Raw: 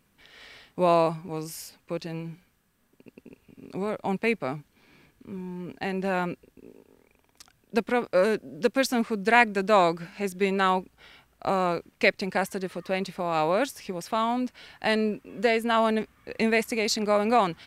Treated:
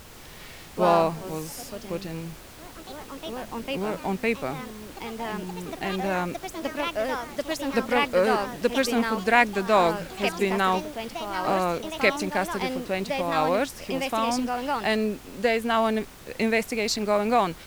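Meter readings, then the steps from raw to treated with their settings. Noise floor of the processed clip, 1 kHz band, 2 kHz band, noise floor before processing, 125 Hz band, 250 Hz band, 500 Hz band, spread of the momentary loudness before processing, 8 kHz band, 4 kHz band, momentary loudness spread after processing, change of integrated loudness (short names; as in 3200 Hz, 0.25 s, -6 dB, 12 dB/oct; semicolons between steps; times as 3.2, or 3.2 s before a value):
-45 dBFS, +1.5 dB, +1.0 dB, -67 dBFS, +0.5 dB, +1.0 dB, +0.5 dB, 15 LU, +3.0 dB, +2.5 dB, 15 LU, +0.5 dB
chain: added noise pink -46 dBFS; echoes that change speed 0.117 s, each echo +3 st, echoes 3, each echo -6 dB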